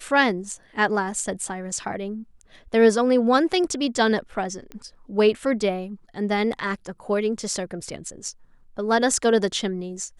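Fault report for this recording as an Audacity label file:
4.720000	4.720000	pop -24 dBFS

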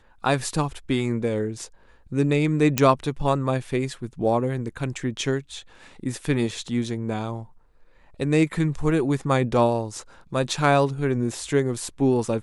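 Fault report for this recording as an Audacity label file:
2.780000	2.780000	pop -4 dBFS

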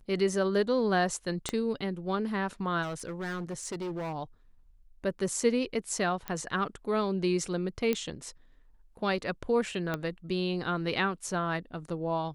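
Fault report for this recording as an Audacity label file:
1.490000	1.490000	pop -15 dBFS
2.820000	4.160000	clipped -32 dBFS
6.280000	6.280000	pop -18 dBFS
7.930000	7.930000	pop -15 dBFS
9.940000	9.940000	pop -17 dBFS

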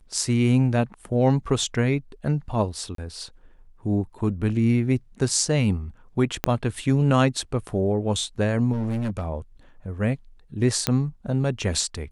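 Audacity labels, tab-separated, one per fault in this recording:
2.950000	2.980000	dropout 33 ms
6.440000	6.440000	pop -6 dBFS
8.720000	9.260000	clipped -23 dBFS
10.870000	10.870000	pop -4 dBFS

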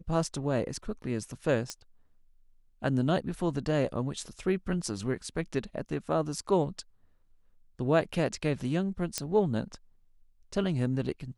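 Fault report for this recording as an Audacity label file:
1.700000	1.700000	pop -19 dBFS
9.180000	9.180000	pop -12 dBFS

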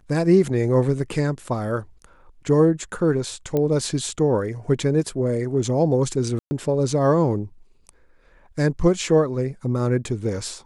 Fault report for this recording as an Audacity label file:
3.570000	3.570000	pop -12 dBFS
6.390000	6.510000	dropout 120 ms

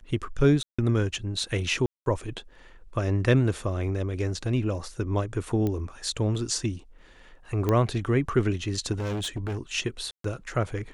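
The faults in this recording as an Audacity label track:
0.630000	0.790000	dropout 155 ms
1.860000	2.060000	dropout 202 ms
5.670000	5.670000	pop -17 dBFS
7.690000	7.690000	pop -13 dBFS
8.920000	9.590000	clipped -27 dBFS
10.110000	10.240000	dropout 133 ms

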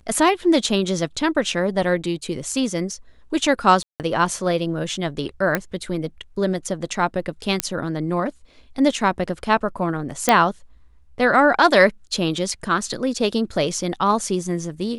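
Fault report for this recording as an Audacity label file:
3.830000	4.000000	dropout 168 ms
5.550000	5.550000	pop -6 dBFS
7.600000	7.600000	pop -2 dBFS
10.290000	10.290000	pop -1 dBFS

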